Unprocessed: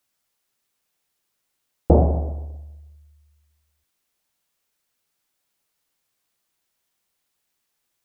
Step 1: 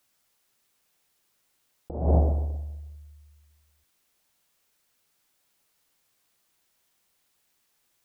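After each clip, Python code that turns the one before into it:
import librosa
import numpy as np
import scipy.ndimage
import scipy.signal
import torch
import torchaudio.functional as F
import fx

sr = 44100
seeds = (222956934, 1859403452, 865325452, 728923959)

y = fx.over_compress(x, sr, threshold_db=-21.0, ratio=-0.5)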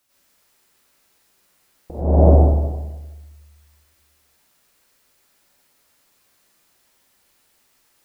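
y = fx.rev_plate(x, sr, seeds[0], rt60_s=1.0, hf_ratio=0.55, predelay_ms=80, drr_db=-9.0)
y = F.gain(torch.from_numpy(y), 1.5).numpy()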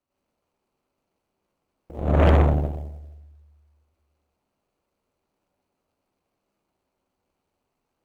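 y = scipy.ndimage.median_filter(x, 25, mode='constant')
y = fx.cheby_harmonics(y, sr, harmonics=(8,), levels_db=(-14,), full_scale_db=-1.5)
y = F.gain(torch.from_numpy(y), -5.5).numpy()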